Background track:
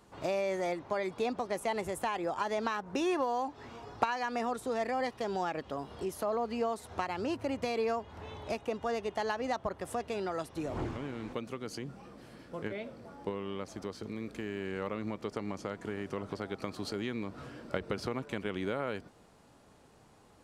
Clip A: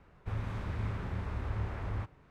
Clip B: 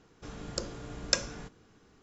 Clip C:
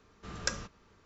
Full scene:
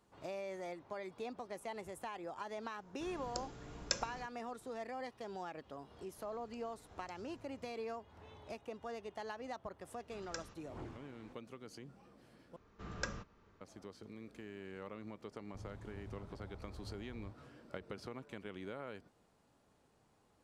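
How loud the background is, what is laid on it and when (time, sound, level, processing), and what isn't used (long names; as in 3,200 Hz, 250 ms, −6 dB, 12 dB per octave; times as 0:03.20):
background track −11.5 dB
0:02.78: mix in B −9 dB
0:05.96: mix in B −8.5 dB + downward compressor 5 to 1, threshold −54 dBFS
0:09.87: mix in C −13.5 dB
0:12.56: overwrite with C −3 dB + high-shelf EQ 3,200 Hz −11.5 dB
0:15.28: mix in A −15 dB + flat-topped bell 1,800 Hz −10 dB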